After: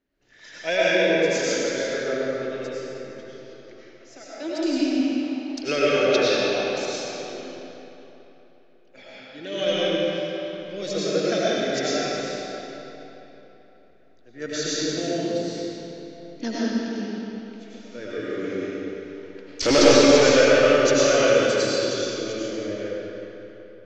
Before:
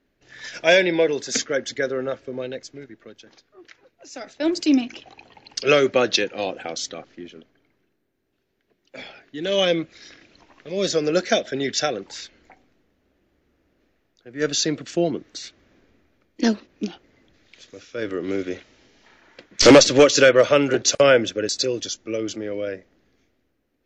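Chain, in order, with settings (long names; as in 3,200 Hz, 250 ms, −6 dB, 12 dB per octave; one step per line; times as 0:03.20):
comb and all-pass reverb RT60 3.5 s, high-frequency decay 0.75×, pre-delay 60 ms, DRR −9 dB
level −10.5 dB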